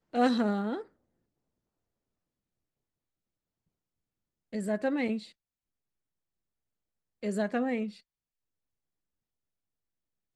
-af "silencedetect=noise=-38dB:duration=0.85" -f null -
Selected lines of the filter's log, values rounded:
silence_start: 0.81
silence_end: 4.53 | silence_duration: 3.72
silence_start: 5.22
silence_end: 7.23 | silence_duration: 2.01
silence_start: 7.90
silence_end: 10.35 | silence_duration: 2.46